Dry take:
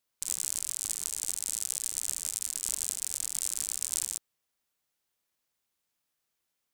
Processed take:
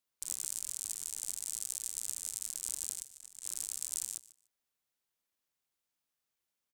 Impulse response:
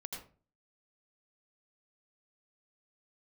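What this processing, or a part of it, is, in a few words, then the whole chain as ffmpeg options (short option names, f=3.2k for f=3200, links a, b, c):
one-band saturation: -filter_complex "[0:a]acrossover=split=260|3900[a][b][c];[b]asoftclip=type=tanh:threshold=-38dB[d];[a][d][c]amix=inputs=3:normalize=0,asettb=1/sr,asplit=3[e][f][g];[e]atrim=end=3.024[h];[f]atrim=start=3.02:end=3.47,asetpts=PTS-STARTPTS,afade=t=in:d=0.004:c=qsin,afade=t=out:st=0.446:d=0.004:c=qsin,agate=range=-16dB:threshold=-32dB:ratio=16:detection=peak[i];[g]atrim=start=3.466[j];[h][i]acrossfade=d=0.004:c1=hsin:c2=qsin[k];[k][j]acrossfade=d=0.004:c1=qsin:c2=hsin,aecho=1:1:148|296:0.112|0.0191,volume=-5.5dB"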